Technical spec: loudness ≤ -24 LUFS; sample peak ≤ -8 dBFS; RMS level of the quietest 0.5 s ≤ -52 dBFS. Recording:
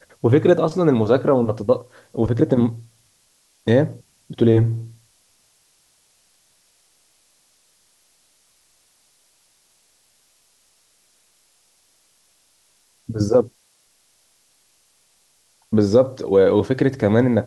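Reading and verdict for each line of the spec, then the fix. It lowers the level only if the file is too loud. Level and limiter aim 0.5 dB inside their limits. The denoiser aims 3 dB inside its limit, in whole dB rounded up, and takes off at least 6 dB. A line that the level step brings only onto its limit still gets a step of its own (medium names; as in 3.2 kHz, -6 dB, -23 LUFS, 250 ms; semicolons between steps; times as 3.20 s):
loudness -18.5 LUFS: fail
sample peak -4.0 dBFS: fail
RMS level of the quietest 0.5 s -61 dBFS: pass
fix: trim -6 dB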